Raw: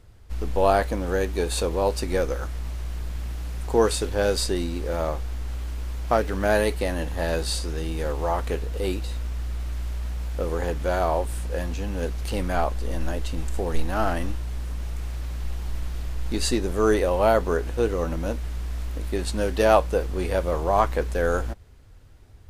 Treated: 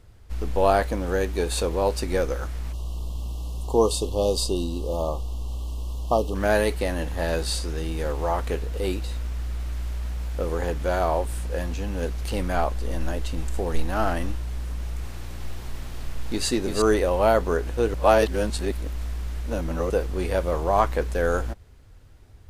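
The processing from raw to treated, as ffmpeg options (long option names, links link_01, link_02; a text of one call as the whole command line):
ffmpeg -i in.wav -filter_complex "[0:a]asplit=3[link_01][link_02][link_03];[link_01]afade=type=out:start_time=2.72:duration=0.02[link_04];[link_02]asuperstop=centerf=1800:order=20:qfactor=1.2,afade=type=in:start_time=2.72:duration=0.02,afade=type=out:start_time=6.34:duration=0.02[link_05];[link_03]afade=type=in:start_time=6.34:duration=0.02[link_06];[link_04][link_05][link_06]amix=inputs=3:normalize=0,asettb=1/sr,asplit=3[link_07][link_08][link_09];[link_07]atrim=end=14.704[link_10];[link_08]atrim=start=14.7:end=16.82,asetpts=PTS-STARTPTS,afade=type=in:duration=0.004:curve=qsin,afade=type=out:start_time=2.116:duration=0.004:curve=qsin,aecho=1:1:342:0.562,atrim=end_sample=93492[link_11];[link_09]atrim=start=16.816[link_12];[link_10][link_11]acrossfade=duration=0.004:curve1=hsin:curve2=qsin[link_13];[link_13][link_12]acrossfade=duration=0.004:curve1=qsin:curve2=hsin,asplit=3[link_14][link_15][link_16];[link_14]atrim=end=17.942[link_17];[link_15]atrim=start=17.938:end=19.902,asetpts=PTS-STARTPTS,areverse[link_18];[link_16]atrim=start=19.898[link_19];[link_17][link_18]acrossfade=duration=0.004:curve1=hsin:curve2=hsin[link_20];[link_20][link_19]acrossfade=duration=0.004:curve1=hsin:curve2=hsin" out.wav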